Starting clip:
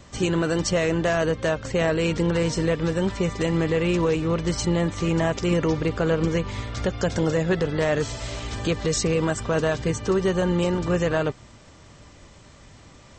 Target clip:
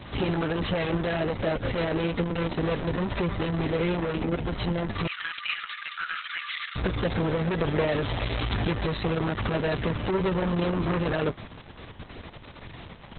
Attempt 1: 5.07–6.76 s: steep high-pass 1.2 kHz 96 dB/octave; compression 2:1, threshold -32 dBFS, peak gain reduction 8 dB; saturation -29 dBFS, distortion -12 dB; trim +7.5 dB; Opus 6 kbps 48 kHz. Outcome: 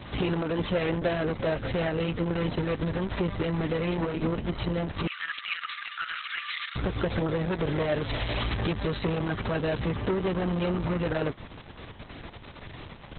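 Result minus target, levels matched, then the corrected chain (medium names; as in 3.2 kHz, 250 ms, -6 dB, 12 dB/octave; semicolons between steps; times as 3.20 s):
compression: peak gain reduction +4.5 dB
5.07–6.76 s: steep high-pass 1.2 kHz 96 dB/octave; compression 2:1, threshold -23.5 dBFS, peak gain reduction 4 dB; saturation -29 dBFS, distortion -8 dB; trim +7.5 dB; Opus 6 kbps 48 kHz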